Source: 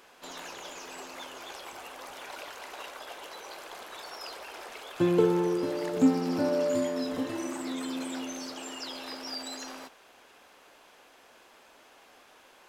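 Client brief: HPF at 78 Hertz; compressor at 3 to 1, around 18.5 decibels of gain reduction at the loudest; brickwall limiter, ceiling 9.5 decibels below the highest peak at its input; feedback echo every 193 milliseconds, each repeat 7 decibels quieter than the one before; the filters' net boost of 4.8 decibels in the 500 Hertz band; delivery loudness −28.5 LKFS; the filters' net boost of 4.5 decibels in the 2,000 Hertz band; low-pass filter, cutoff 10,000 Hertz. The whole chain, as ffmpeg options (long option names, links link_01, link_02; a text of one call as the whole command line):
ffmpeg -i in.wav -af "highpass=78,lowpass=10000,equalizer=frequency=500:width_type=o:gain=6,equalizer=frequency=2000:width_type=o:gain=5.5,acompressor=threshold=-40dB:ratio=3,alimiter=level_in=9.5dB:limit=-24dB:level=0:latency=1,volume=-9.5dB,aecho=1:1:193|386|579|772|965:0.447|0.201|0.0905|0.0407|0.0183,volume=14.5dB" out.wav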